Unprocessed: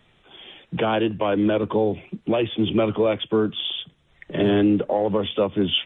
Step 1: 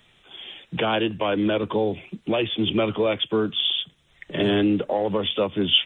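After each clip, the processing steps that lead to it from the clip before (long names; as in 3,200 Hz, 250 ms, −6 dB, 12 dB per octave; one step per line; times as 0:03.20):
high-shelf EQ 2,400 Hz +11 dB
level −2.5 dB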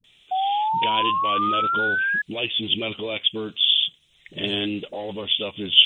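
high shelf with overshoot 2,100 Hz +10 dB, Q 1.5
all-pass dispersion highs, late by 42 ms, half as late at 350 Hz
sound drawn into the spectrogram rise, 0:00.31–0:02.22, 740–1,700 Hz −15 dBFS
level −7.5 dB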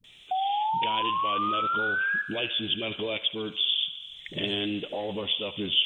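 downward compressor 2 to 1, threshold −36 dBFS, peak gain reduction 14.5 dB
feedback echo with a high-pass in the loop 72 ms, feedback 81%, high-pass 510 Hz, level −15 dB
level +3.5 dB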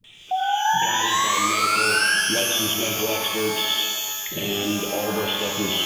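brickwall limiter −22 dBFS, peak gain reduction 10.5 dB
reverb with rising layers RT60 1.7 s, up +12 semitones, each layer −2 dB, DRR 1.5 dB
level +4 dB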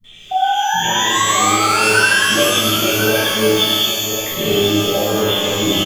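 single-tap delay 1,042 ms −8.5 dB
convolution reverb, pre-delay 3 ms, DRR −9 dB
level −6.5 dB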